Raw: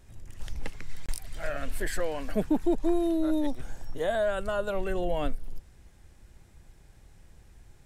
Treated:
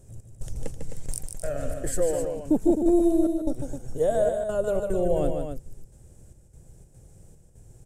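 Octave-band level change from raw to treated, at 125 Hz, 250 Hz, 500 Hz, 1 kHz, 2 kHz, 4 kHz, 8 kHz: +5.5 dB, +4.5 dB, +5.5 dB, 0.0 dB, -8.0 dB, n/a, +8.5 dB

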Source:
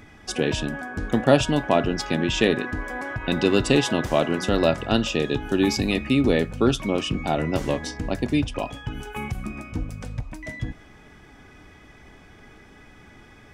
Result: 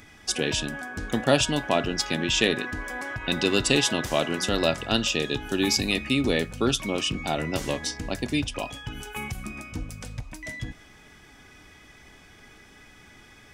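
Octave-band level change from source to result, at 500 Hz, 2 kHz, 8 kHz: -4.5, +0.5, +5.5 dB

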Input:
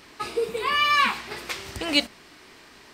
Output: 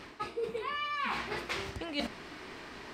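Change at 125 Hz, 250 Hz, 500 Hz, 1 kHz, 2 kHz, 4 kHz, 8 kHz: -3.0, -8.0, -8.0, -11.0, -12.0, -14.5, -13.0 dB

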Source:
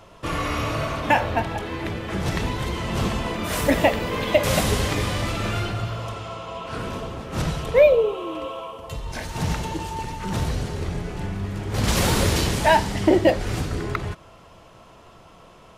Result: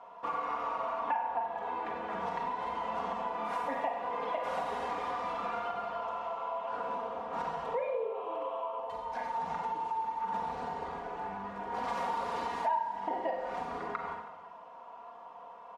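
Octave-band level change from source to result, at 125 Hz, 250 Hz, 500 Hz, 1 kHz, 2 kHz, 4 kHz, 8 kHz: -30.0 dB, -20.5 dB, -14.0 dB, -4.5 dB, -15.5 dB, -21.5 dB, under -25 dB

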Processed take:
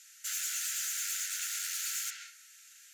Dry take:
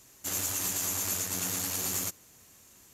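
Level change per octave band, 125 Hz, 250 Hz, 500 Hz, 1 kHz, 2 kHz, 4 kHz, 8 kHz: under -40 dB, under -40 dB, under -40 dB, -9.0 dB, +0.5 dB, -0.5 dB, -2.5 dB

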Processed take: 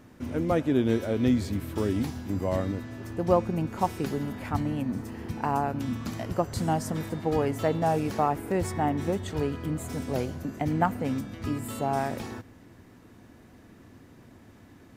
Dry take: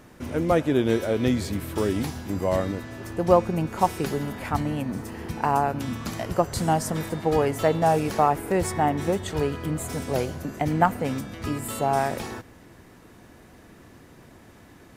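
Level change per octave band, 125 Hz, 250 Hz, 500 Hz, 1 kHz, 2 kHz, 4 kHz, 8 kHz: -2.0, -1.5, -4.5, -5.5, -5.5, -5.5, -7.0 dB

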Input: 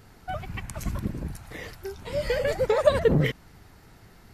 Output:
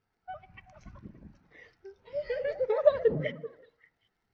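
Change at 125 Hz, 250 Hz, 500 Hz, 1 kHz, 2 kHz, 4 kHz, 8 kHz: -14.0 dB, -12.5 dB, -3.5 dB, -8.5 dB, -9.5 dB, under -10 dB, under -25 dB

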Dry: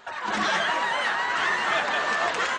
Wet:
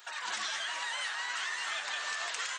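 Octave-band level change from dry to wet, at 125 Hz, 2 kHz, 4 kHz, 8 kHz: under -30 dB, -10.5 dB, -5.0 dB, 0.0 dB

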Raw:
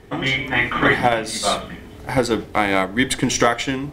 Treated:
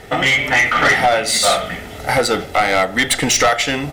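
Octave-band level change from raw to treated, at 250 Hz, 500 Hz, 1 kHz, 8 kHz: -2.0, +3.5, +5.0, +8.0 dB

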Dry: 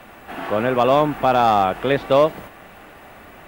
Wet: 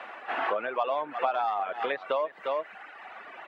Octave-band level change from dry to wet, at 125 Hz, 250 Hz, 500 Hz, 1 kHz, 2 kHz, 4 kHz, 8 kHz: under -30 dB, -22.5 dB, -12.0 dB, -10.5 dB, -6.5 dB, -12.0 dB, n/a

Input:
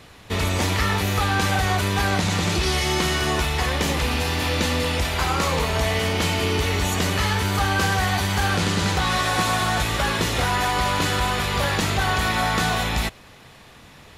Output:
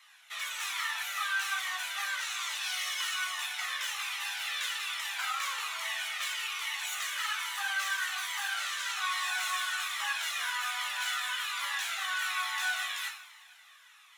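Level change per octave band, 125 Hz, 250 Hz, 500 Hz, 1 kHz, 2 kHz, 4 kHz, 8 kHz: under -40 dB, under -40 dB, -33.0 dB, -13.5 dB, -7.0 dB, -8.0 dB, -7.5 dB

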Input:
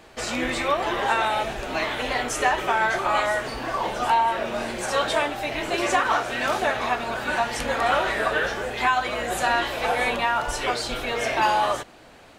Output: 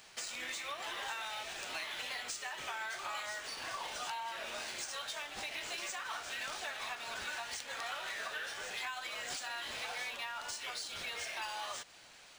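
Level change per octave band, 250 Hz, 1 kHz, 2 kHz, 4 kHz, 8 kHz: -27.0, -20.5, -15.0, -9.5, -8.0 dB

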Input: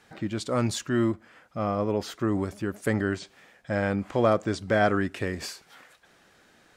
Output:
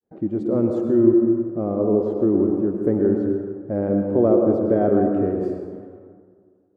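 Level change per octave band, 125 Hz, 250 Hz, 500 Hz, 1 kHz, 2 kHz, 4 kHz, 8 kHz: +2.0 dB, +10.0 dB, +8.5 dB, -1.5 dB, under -10 dB, under -20 dB, under -25 dB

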